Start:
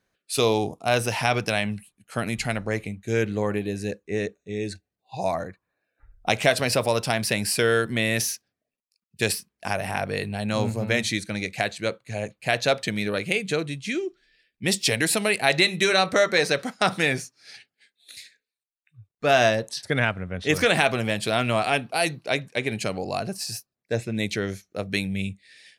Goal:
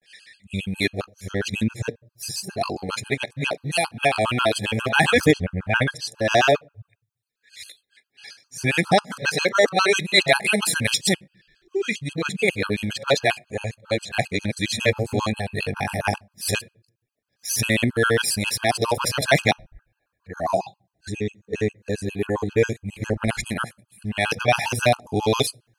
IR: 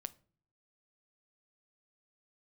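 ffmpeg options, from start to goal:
-filter_complex "[0:a]areverse,aphaser=in_gain=1:out_gain=1:delay=3:decay=0.32:speed=0.56:type=triangular,asplit=2[link_01][link_02];[1:a]atrim=start_sample=2205[link_03];[link_02][link_03]afir=irnorm=-1:irlink=0,volume=-4dB[link_04];[link_01][link_04]amix=inputs=2:normalize=0,afftfilt=real='re*gt(sin(2*PI*7.4*pts/sr)*(1-2*mod(floor(b*sr/1024/830),2)),0)':imag='im*gt(sin(2*PI*7.4*pts/sr)*(1-2*mod(floor(b*sr/1024/830),2)),0)':win_size=1024:overlap=0.75,volume=2dB"

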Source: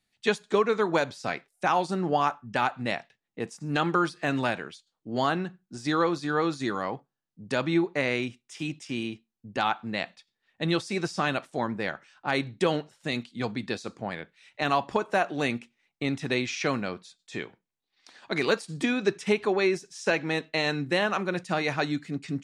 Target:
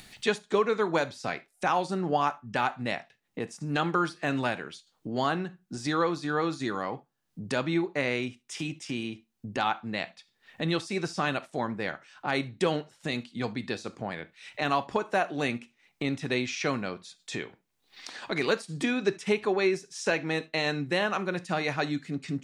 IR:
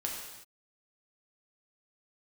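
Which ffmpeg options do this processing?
-filter_complex "[0:a]acompressor=mode=upward:threshold=-28dB:ratio=2.5,asplit=2[link_01][link_02];[1:a]atrim=start_sample=2205,atrim=end_sample=3528[link_03];[link_02][link_03]afir=irnorm=-1:irlink=0,volume=-12dB[link_04];[link_01][link_04]amix=inputs=2:normalize=0,volume=-3.5dB"

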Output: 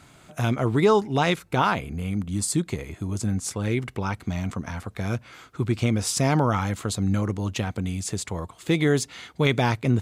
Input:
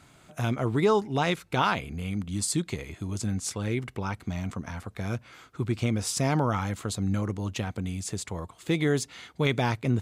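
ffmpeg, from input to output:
ffmpeg -i in.wav -filter_complex "[0:a]asettb=1/sr,asplit=3[link_01][link_02][link_03];[link_01]atrim=end=1.394[link_04];[link_02]atrim=start=1.39:end=3.64,asetpts=PTS-STARTPTS,afade=type=in:duration=0.004:curve=qsin,afade=type=out:start_time=2.246:duration=0.004:curve=qsin,equalizer=frequency=3600:width=0.66:gain=-5[link_05];[link_03]atrim=start=3.636[link_06];[link_04][link_05]acrossfade=duration=0.004:curve1=hsin:curve2=qsin[link_07];[link_07][link_06]acrossfade=duration=0.004:curve1=qsin:curve2=hsin,volume=4dB" out.wav

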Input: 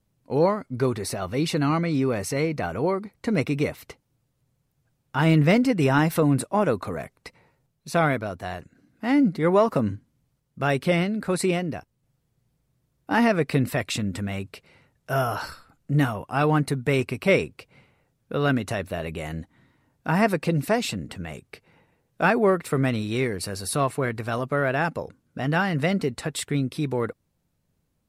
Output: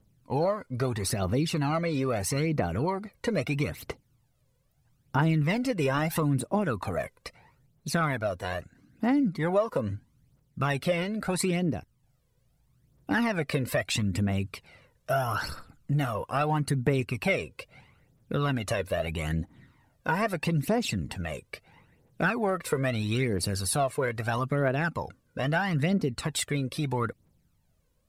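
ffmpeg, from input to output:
ffmpeg -i in.wav -af "aphaser=in_gain=1:out_gain=1:delay=2.1:decay=0.61:speed=0.77:type=triangular,acompressor=threshold=-25dB:ratio=3" out.wav

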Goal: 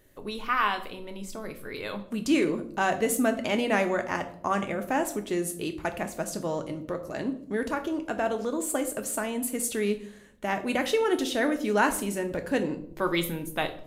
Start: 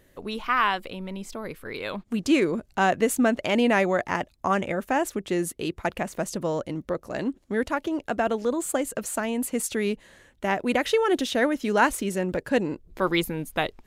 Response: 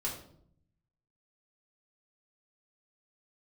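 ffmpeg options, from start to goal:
-filter_complex "[0:a]asplit=2[link_01][link_02];[1:a]atrim=start_sample=2205,highshelf=frequency=6300:gain=11.5[link_03];[link_02][link_03]afir=irnorm=-1:irlink=0,volume=-5.5dB[link_04];[link_01][link_04]amix=inputs=2:normalize=0,volume=-6.5dB"

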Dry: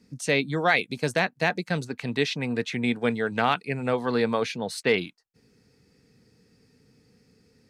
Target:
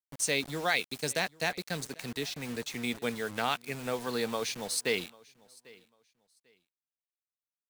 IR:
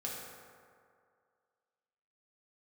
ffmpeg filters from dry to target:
-filter_complex "[0:a]bass=frequency=250:gain=-3,treble=frequency=4000:gain=15,asettb=1/sr,asplit=3[link_01][link_02][link_03];[link_01]atrim=end=1.854[link_04];[link_02]atrim=start=1.85:end=2.75,asetpts=PTS-STARTPTS,afade=type=in:duration=0.004:curve=qsin,afade=type=out:start_time=0.896:duration=0.004:curve=qsin,acrossover=split=370[link_05][link_06];[link_06]acompressor=threshold=-28dB:ratio=4[link_07];[link_05][link_07]amix=inputs=2:normalize=0[link_08];[link_03]atrim=start=2.746[link_09];[link_04][link_08]acrossfade=duration=0.004:curve1=hsin:curve2=qsin[link_10];[link_10][link_09]acrossfade=duration=0.004:curve1=qsin:curve2=hsin,acrusher=bits=5:mix=0:aa=0.000001,aecho=1:1:795|1590:0.0631|0.0145,volume=-8dB"

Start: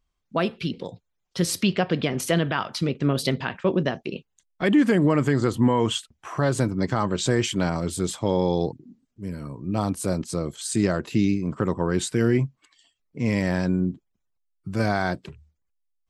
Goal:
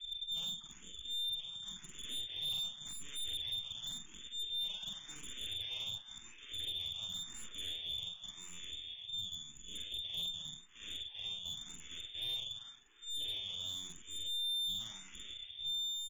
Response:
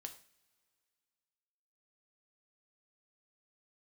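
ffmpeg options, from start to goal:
-filter_complex "[0:a]aeval=exprs='val(0)+0.5*0.0224*sgn(val(0))':channel_layout=same,equalizer=frequency=1200:width=0.35:gain=-5,aeval=exprs='0.299*sin(PI/2*7.08*val(0)/0.299)':channel_layout=same,agate=range=-55dB:threshold=-8dB:ratio=16:detection=peak,aemphasis=mode=reproduction:type=bsi,asplit=2[link_01][link_02];[link_02]adelay=46,volume=-2dB[link_03];[link_01][link_03]amix=inputs=2:normalize=0,lowpass=frequency=3100:width_type=q:width=0.5098,lowpass=frequency=3100:width_type=q:width=0.6013,lowpass=frequency=3100:width_type=q:width=0.9,lowpass=frequency=3100:width_type=q:width=2.563,afreqshift=-3600,crystalizer=i=5:c=0,asplit=2[link_04][link_05];[link_05]adelay=353,lowpass=frequency=2600:poles=1,volume=-5dB,asplit=2[link_06][link_07];[link_07]adelay=353,lowpass=frequency=2600:poles=1,volume=0.48,asplit=2[link_08][link_09];[link_09]adelay=353,lowpass=frequency=2600:poles=1,volume=0.48,asplit=2[link_10][link_11];[link_11]adelay=353,lowpass=frequency=2600:poles=1,volume=0.48,asplit=2[link_12][link_13];[link_13]adelay=353,lowpass=frequency=2600:poles=1,volume=0.48,asplit=2[link_14][link_15];[link_15]adelay=353,lowpass=frequency=2600:poles=1,volume=0.48[link_16];[link_06][link_08][link_10][link_12][link_14][link_16]amix=inputs=6:normalize=0[link_17];[link_04][link_17]amix=inputs=2:normalize=0,aeval=exprs='0.00891*(cos(1*acos(clip(val(0)/0.00891,-1,1)))-cos(1*PI/2))+0.00224*(cos(2*acos(clip(val(0)/0.00891,-1,1)))-cos(2*PI/2))':channel_layout=same,asplit=2[link_18][link_19];[link_19]afreqshift=0.91[link_20];[link_18][link_20]amix=inputs=2:normalize=1,volume=6.5dB"

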